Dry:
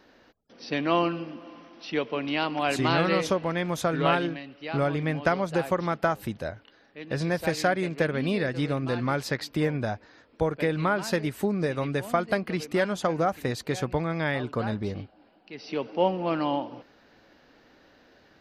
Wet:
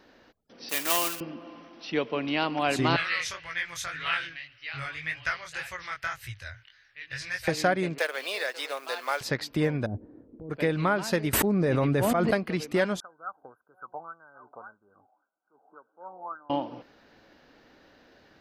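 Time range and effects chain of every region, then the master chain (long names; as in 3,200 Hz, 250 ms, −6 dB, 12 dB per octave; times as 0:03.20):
0:00.69–0:01.21: one scale factor per block 3 bits + high-pass filter 1,200 Hz 6 dB per octave + high-shelf EQ 8,500 Hz +12 dB
0:02.96–0:07.48: drawn EQ curve 120 Hz 0 dB, 190 Hz −29 dB, 850 Hz −14 dB, 1,900 Hz +8 dB, 3,600 Hz +3 dB, 6,000 Hz +6 dB, 12,000 Hz 0 dB + chorus effect 1.8 Hz, delay 16.5 ms, depth 7.6 ms
0:07.98–0:09.21: mu-law and A-law mismatch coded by A + high-pass filter 540 Hz 24 dB per octave + high-shelf EQ 3,600 Hz +10.5 dB
0:09.86–0:10.50: low-pass with resonance 320 Hz, resonance Q 1.6 + compressor whose output falls as the input rises −36 dBFS
0:11.33–0:12.31: parametric band 5,800 Hz −7 dB 3 octaves + volume swells 138 ms + envelope flattener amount 100%
0:13.00–0:16.50: LFO wah 1.8 Hz 740–2,500 Hz, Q 7.3 + linear-phase brick-wall band-stop 1,600–9,800 Hz
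whole clip: no processing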